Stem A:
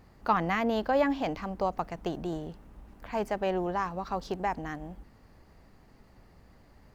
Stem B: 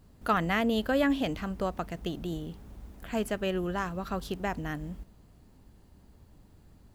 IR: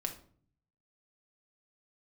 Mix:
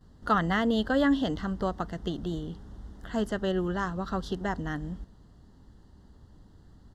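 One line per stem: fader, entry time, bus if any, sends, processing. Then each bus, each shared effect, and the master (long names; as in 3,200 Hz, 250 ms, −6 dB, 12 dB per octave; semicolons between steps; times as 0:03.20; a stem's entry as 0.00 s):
−14.0 dB, 0.00 s, no send, no processing
+2.5 dB, 10 ms, no send, low-pass filter 6,000 Hz 12 dB per octave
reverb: not used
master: Butterworth band-reject 2,400 Hz, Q 2.4; parametric band 610 Hz −3.5 dB 0.82 octaves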